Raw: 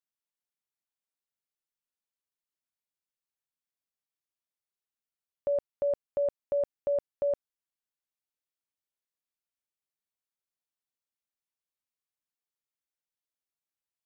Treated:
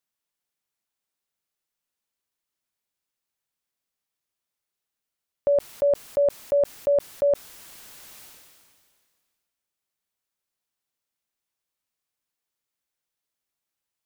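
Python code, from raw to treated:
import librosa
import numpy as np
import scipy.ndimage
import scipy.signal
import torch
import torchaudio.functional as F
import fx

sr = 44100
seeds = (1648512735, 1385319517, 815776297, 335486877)

y = fx.sustainer(x, sr, db_per_s=30.0)
y = y * 10.0 ** (7.5 / 20.0)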